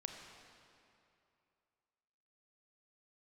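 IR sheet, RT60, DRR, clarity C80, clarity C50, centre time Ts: 2.7 s, 3.0 dB, 4.5 dB, 4.0 dB, 69 ms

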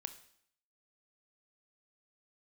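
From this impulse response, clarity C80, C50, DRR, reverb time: 16.0 dB, 13.0 dB, 9.5 dB, 0.65 s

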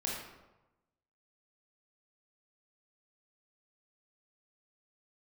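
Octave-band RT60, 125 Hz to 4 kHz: 1.2 s, 1.0 s, 1.1 s, 1.0 s, 0.80 s, 0.65 s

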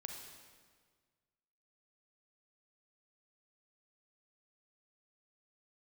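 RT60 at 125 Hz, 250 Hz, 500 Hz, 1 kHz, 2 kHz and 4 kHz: 2.0 s, 1.8 s, 1.7 s, 1.6 s, 1.5 s, 1.4 s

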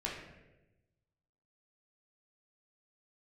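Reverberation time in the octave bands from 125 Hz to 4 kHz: 1.6 s, 1.3 s, 1.2 s, 0.85 s, 0.90 s, 0.70 s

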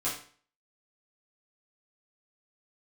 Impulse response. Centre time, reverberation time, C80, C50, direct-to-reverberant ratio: 34 ms, 0.45 s, 10.0 dB, 5.5 dB, -10.0 dB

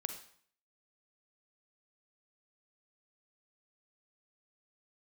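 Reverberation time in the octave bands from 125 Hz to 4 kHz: 0.65 s, 0.60 s, 0.55 s, 0.55 s, 0.55 s, 0.55 s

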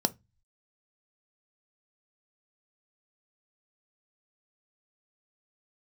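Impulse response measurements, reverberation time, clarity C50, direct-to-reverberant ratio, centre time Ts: 0.20 s, 24.5 dB, 11.0 dB, 3 ms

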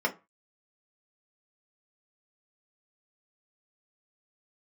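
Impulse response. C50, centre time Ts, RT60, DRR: 17.5 dB, 9 ms, 0.30 s, 0.5 dB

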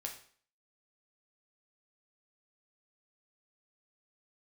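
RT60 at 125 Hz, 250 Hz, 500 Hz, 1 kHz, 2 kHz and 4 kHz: 0.45 s, 0.50 s, 0.50 s, 0.50 s, 0.50 s, 0.45 s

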